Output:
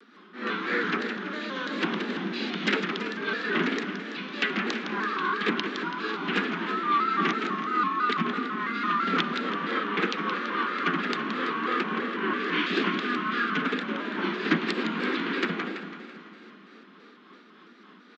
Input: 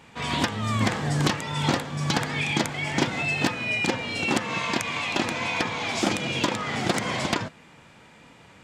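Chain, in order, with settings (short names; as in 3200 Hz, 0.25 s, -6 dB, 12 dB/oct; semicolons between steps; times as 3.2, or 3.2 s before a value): steep high-pass 390 Hz 96 dB/oct; band shelf 1500 Hz -12.5 dB 1.2 oct; in parallel at -2.5 dB: limiter -21.5 dBFS, peak gain reduction 10.5 dB; on the sum: rotary speaker horn 7.5 Hz; wide varispeed 0.475×; feedback echo 0.166 s, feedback 49%, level -7 dB; Schroeder reverb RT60 4 s, DRR 12 dB; shaped vibrato square 3 Hz, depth 100 cents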